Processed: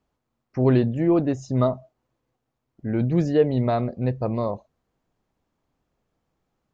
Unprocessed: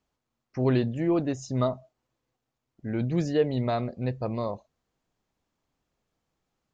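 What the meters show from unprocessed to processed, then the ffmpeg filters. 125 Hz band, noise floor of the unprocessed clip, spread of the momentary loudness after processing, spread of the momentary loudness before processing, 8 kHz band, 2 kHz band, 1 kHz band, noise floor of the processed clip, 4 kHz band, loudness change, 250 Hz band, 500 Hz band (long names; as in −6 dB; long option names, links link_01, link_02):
+5.5 dB, −84 dBFS, 12 LU, 12 LU, can't be measured, +1.5 dB, +4.0 dB, −80 dBFS, −1.0 dB, +5.0 dB, +5.5 dB, +5.0 dB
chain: -af "highshelf=frequency=2100:gain=-9,volume=5.5dB"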